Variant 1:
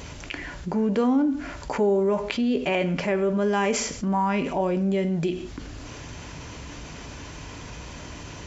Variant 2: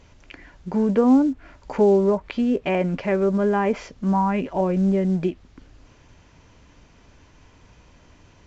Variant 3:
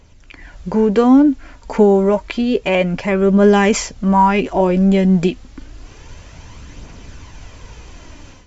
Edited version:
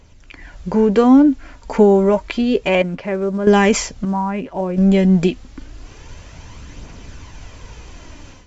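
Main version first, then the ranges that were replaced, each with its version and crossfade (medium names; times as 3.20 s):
3
2.82–3.47 s: from 2
4.05–4.78 s: from 2
not used: 1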